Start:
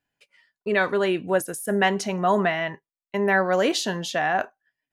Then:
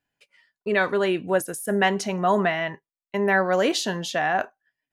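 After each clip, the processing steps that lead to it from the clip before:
no processing that can be heard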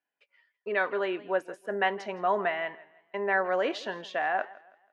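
band-pass filter 400–2,600 Hz
feedback echo with a swinging delay time 164 ms, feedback 35%, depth 108 cents, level −20 dB
level −4.5 dB

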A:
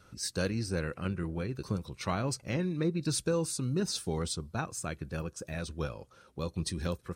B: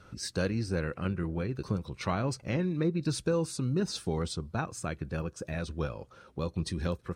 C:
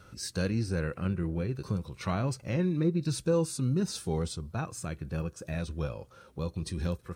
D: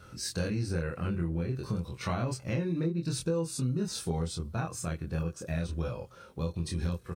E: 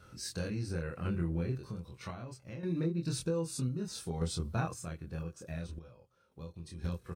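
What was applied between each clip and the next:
low-pass filter 3,300 Hz 6 dB per octave; in parallel at −2 dB: downward compressor, threshold −40 dBFS, peak gain reduction 14 dB
high-shelf EQ 8,700 Hz +12 dB; harmonic and percussive parts rebalanced percussive −8 dB; level +2.5 dB
double-tracking delay 24 ms −2 dB; downward compressor 6 to 1, threshold −27 dBFS, peak gain reduction 9.5 dB
sample-and-hold tremolo 1.9 Hz, depth 90%

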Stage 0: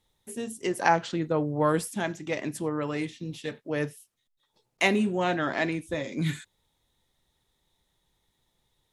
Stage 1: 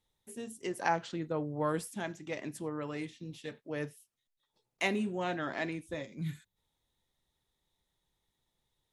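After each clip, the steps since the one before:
gain on a spectral selection 0:06.06–0:06.56, 220–11,000 Hz −8 dB
level −8 dB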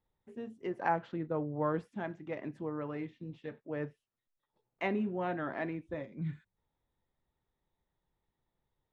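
low-pass filter 1,700 Hz 12 dB per octave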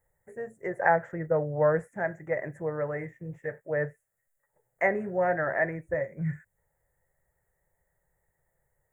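drawn EQ curve 160 Hz 0 dB, 250 Hz −16 dB, 560 Hz +7 dB, 1,100 Hz −6 dB, 1,900 Hz +9 dB, 2,800 Hz −21 dB, 4,300 Hz −30 dB, 7,100 Hz +7 dB
level +7 dB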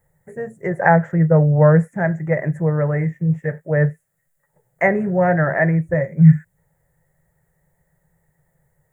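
parametric band 160 Hz +14 dB 0.63 octaves
level +8 dB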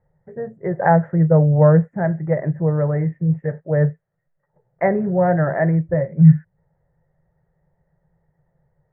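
low-pass filter 1,200 Hz 12 dB per octave

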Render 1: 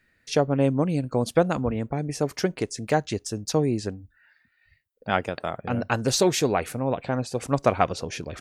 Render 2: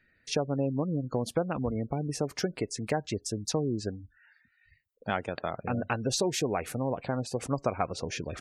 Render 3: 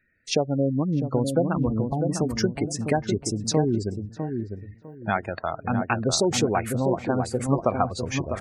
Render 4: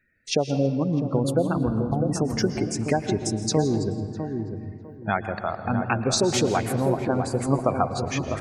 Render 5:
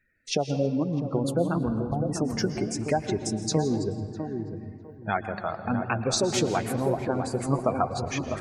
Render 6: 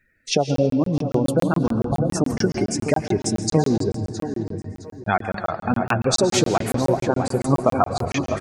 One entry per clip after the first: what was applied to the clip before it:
gate on every frequency bin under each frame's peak −25 dB strong; downward compressor 2.5 to 1, threshold −26 dBFS, peak gain reduction 8.5 dB; level −1.5 dB
gate on every frequency bin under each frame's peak −20 dB strong; feedback echo with a low-pass in the loop 652 ms, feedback 41%, low-pass 900 Hz, level −4 dB; noise reduction from a noise print of the clip's start 8 dB; level +6.5 dB
on a send at −10.5 dB: convolution reverb RT60 2.1 s, pre-delay 109 ms; on the sum: feedback echo with a swinging delay time 164 ms, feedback 32%, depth 161 cents, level −18.5 dB
flanger 1 Hz, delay 0.9 ms, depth 5.8 ms, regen +58%; level +1.5 dB
repeating echo 663 ms, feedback 30%, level −17 dB; regular buffer underruns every 0.14 s, samples 1,024, zero, from 0:00.56; level +6.5 dB

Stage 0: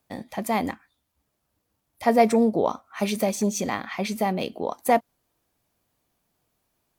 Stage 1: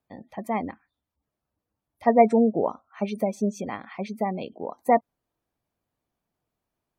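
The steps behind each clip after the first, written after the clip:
gate on every frequency bin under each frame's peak −25 dB strong
high-shelf EQ 3,200 Hz −9 dB
expander for the loud parts 1.5 to 1, over −32 dBFS
level +2.5 dB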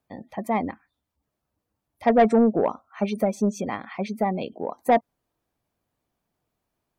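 soft clipping −14 dBFS, distortion −13 dB
level +3.5 dB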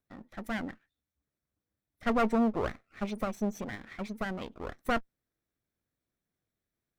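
lower of the sound and its delayed copy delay 0.53 ms
level −7.5 dB

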